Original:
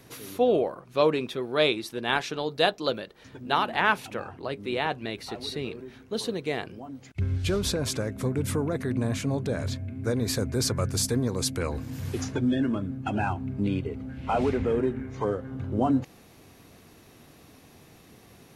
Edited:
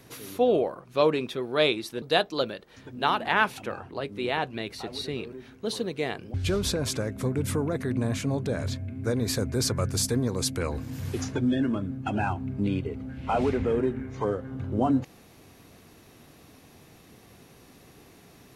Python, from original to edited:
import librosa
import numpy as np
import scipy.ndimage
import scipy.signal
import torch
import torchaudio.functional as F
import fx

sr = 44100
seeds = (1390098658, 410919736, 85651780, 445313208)

y = fx.edit(x, sr, fx.cut(start_s=2.02, length_s=0.48),
    fx.cut(start_s=6.82, length_s=0.52), tone=tone)